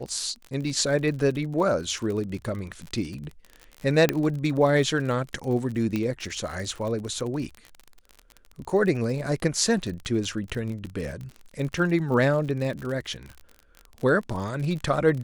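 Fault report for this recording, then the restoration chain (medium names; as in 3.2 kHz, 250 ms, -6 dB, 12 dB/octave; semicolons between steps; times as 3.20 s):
crackle 47 per s -32 dBFS
4.09 s: pop -7 dBFS
5.96 s: pop -15 dBFS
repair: de-click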